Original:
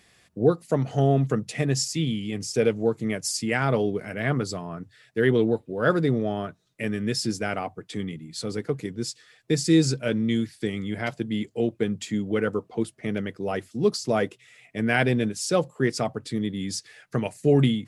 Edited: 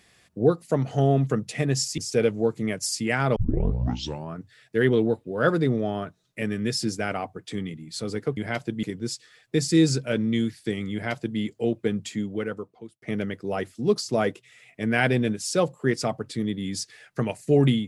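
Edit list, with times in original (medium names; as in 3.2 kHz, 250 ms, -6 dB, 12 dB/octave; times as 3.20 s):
1.98–2.40 s: delete
3.78 s: tape start 0.96 s
10.89–11.35 s: copy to 8.79 s
11.96–12.98 s: fade out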